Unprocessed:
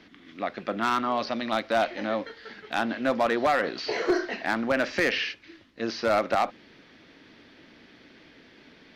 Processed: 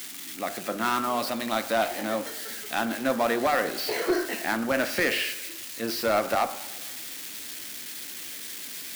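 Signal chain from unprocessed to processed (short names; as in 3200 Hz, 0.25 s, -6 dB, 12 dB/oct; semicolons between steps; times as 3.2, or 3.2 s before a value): switching spikes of -27 dBFS; de-hum 49.69 Hz, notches 35; warbling echo 0.113 s, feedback 61%, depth 180 cents, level -19 dB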